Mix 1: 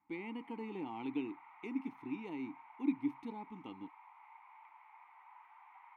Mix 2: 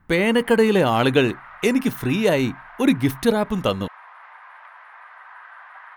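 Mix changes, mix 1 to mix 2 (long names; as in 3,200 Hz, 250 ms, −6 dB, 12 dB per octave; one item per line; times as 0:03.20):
speech +11.5 dB
master: remove formant filter u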